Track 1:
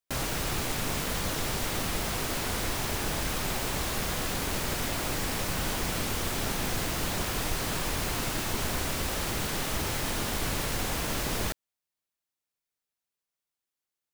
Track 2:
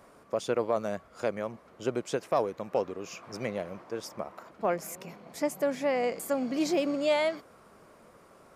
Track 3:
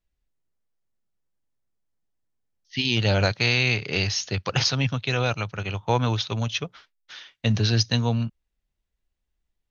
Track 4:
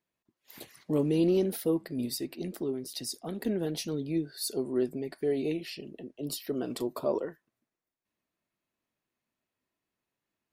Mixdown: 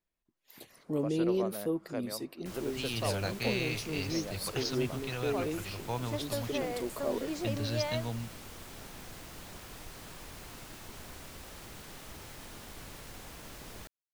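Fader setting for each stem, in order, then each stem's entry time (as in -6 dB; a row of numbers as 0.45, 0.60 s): -16.5, -9.0, -13.5, -4.5 dB; 2.35, 0.70, 0.00, 0.00 s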